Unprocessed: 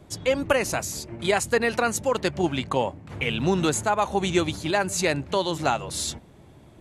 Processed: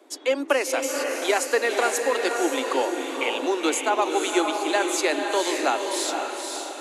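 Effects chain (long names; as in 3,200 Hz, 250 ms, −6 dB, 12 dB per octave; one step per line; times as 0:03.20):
Butterworth high-pass 260 Hz 96 dB per octave
on a send: feedback delay with all-pass diffusion 510 ms, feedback 48%, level −4 dB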